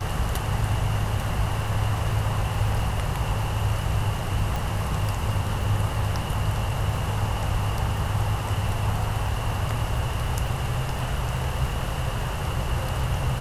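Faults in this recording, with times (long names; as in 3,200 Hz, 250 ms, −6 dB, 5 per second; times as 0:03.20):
surface crackle 19 per second
0:04.56: click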